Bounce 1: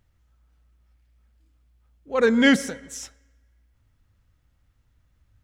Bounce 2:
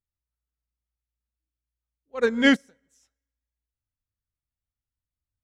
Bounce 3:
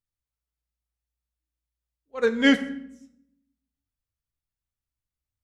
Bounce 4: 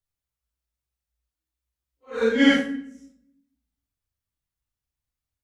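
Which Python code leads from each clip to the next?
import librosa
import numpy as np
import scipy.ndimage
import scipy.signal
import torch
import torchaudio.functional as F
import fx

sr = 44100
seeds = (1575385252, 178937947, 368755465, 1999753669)

y1 = fx.upward_expand(x, sr, threshold_db=-32.0, expansion=2.5)
y2 = fx.room_shoebox(y1, sr, seeds[0], volume_m3=190.0, walls='mixed', distance_m=0.38)
y2 = y2 * 10.0 ** (-1.5 / 20.0)
y3 = fx.phase_scramble(y2, sr, seeds[1], window_ms=200)
y3 = y3 * 10.0 ** (2.0 / 20.0)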